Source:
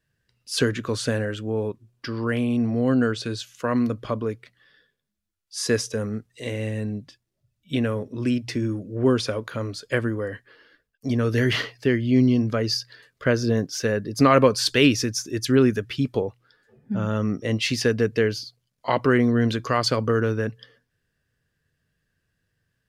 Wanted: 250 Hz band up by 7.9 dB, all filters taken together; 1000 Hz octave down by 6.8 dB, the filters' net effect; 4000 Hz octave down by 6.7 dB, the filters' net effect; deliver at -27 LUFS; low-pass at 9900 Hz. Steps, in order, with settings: LPF 9900 Hz; bell 250 Hz +9 dB; bell 1000 Hz -9 dB; bell 4000 Hz -8.5 dB; gain -8 dB

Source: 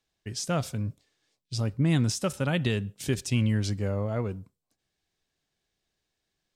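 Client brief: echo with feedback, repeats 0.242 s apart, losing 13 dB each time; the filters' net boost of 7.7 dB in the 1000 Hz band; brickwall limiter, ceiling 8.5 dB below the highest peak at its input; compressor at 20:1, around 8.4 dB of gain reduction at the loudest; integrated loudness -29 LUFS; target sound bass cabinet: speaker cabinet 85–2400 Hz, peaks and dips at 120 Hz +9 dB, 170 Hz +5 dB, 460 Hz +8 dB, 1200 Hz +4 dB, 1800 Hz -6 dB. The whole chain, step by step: bell 1000 Hz +9 dB; compressor 20:1, threshold -28 dBFS; limiter -27.5 dBFS; speaker cabinet 85–2400 Hz, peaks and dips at 120 Hz +9 dB, 170 Hz +5 dB, 460 Hz +8 dB, 1200 Hz +4 dB, 1800 Hz -6 dB; feedback echo 0.242 s, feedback 22%, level -13 dB; gain +4 dB

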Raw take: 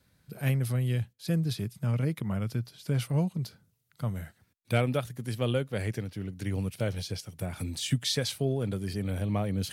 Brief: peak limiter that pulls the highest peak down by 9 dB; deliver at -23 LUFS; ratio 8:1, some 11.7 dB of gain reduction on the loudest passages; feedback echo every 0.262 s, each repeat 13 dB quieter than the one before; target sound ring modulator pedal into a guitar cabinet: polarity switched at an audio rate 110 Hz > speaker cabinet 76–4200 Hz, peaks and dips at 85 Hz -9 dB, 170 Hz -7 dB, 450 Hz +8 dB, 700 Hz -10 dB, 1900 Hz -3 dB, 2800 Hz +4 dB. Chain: compressor 8:1, threshold -34 dBFS; limiter -32.5 dBFS; feedback echo 0.262 s, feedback 22%, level -13 dB; polarity switched at an audio rate 110 Hz; speaker cabinet 76–4200 Hz, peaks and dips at 85 Hz -9 dB, 170 Hz -7 dB, 450 Hz +8 dB, 700 Hz -10 dB, 1900 Hz -3 dB, 2800 Hz +4 dB; gain +20 dB

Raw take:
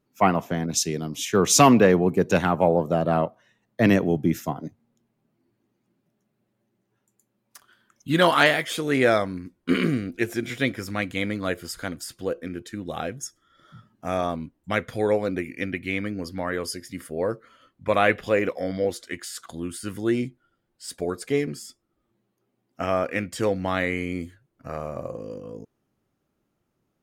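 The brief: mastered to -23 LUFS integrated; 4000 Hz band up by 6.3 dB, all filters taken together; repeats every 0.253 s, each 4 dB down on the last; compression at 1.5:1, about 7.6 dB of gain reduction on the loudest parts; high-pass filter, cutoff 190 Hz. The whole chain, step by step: HPF 190 Hz; bell 4000 Hz +8.5 dB; compressor 1.5:1, threshold -32 dBFS; feedback echo 0.253 s, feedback 63%, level -4 dB; gain +5 dB

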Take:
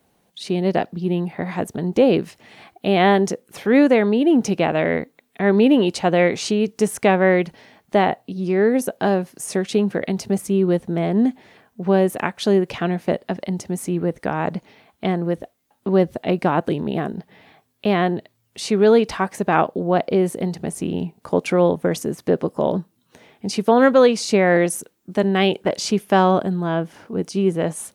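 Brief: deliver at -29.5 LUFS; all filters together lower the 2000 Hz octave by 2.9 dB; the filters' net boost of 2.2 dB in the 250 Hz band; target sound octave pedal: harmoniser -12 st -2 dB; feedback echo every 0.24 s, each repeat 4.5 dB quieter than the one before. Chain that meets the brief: bell 250 Hz +3 dB; bell 2000 Hz -3.5 dB; feedback echo 0.24 s, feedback 60%, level -4.5 dB; harmoniser -12 st -2 dB; gain -14 dB

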